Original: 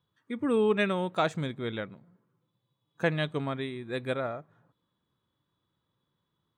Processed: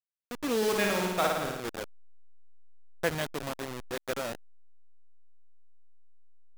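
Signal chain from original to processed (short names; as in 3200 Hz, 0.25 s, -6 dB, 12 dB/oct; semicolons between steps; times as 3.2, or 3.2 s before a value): level-crossing sampler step -27 dBFS; low shelf 190 Hz -11 dB; 0.57–1.6 flutter echo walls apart 9.4 m, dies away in 1.1 s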